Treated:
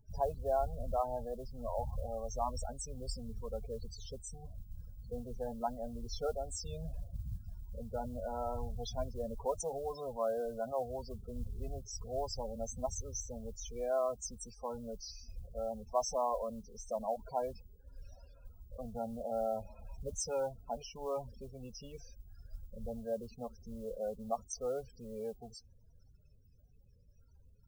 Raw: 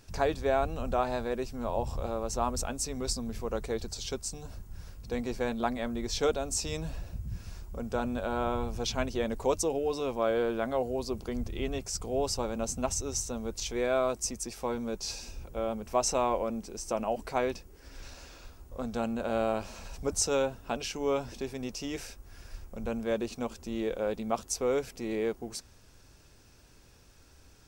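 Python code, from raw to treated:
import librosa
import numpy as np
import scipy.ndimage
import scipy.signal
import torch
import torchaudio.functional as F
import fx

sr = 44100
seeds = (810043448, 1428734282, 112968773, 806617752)

y = fx.spec_topn(x, sr, count=16)
y = fx.mod_noise(y, sr, seeds[0], snr_db=32)
y = fx.fixed_phaser(y, sr, hz=790.0, stages=4)
y = y * 10.0 ** (-3.0 / 20.0)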